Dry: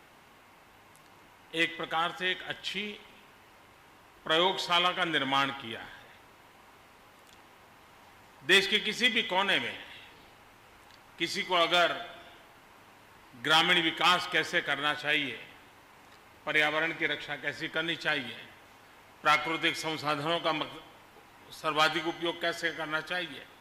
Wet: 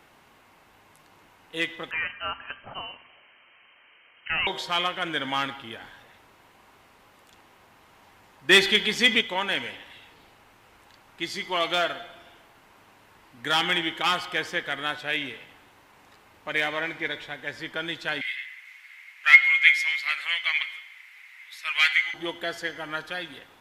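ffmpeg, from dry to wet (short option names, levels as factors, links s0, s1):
-filter_complex "[0:a]asettb=1/sr,asplit=3[s0][s1][s2];[s0]atrim=end=1.914[s3];[s1]atrim=start=1.91:end=4.47,asetpts=PTS-STARTPTS,afade=t=in:d=0.004:c=qsin,afade=t=out:st=2.556:d=0.004:c=qsin,lowpass=f=2700:t=q:w=0.5098,lowpass=f=2700:t=q:w=0.6013,lowpass=f=2700:t=q:w=0.9,lowpass=f=2700:t=q:w=2.563,afreqshift=-3200[s4];[s2]atrim=start=4.466[s5];[s3][s4]acrossfade=d=0.004:c1=hsin:c2=qsin[s6];[s6][s5]acrossfade=d=0.004:c1=qsin:c2=hsin,asettb=1/sr,asplit=3[s7][s8][s9];[s7]atrim=end=8.494[s10];[s8]atrim=start=8.49:end=9.21,asetpts=PTS-STARTPTS,afade=t=in:d=0.004:c=qsin,afade=t=out:st=0.716:d=0.004:c=qsin,acontrast=57[s11];[s9]atrim=start=9.206[s12];[s10][s11]acrossfade=d=0.004:c1=hsin:c2=qsin[s13];[s13][s12]acrossfade=d=0.004:c1=qsin:c2=hsin,asettb=1/sr,asplit=3[s14][s15][s16];[s14]atrim=end=18.214[s17];[s15]atrim=start=18.21:end=22.14,asetpts=PTS-STARTPTS,afade=t=in:d=0.004:c=qsin,afade=t=out:st=3.926:d=0.004:c=qsin,highpass=f=2100:t=q:w=8.2[s18];[s16]atrim=start=22.136[s19];[s17][s18]acrossfade=d=0.004:c1=hsin:c2=qsin[s20];[s20][s19]acrossfade=d=0.004:c1=qsin:c2=hsin"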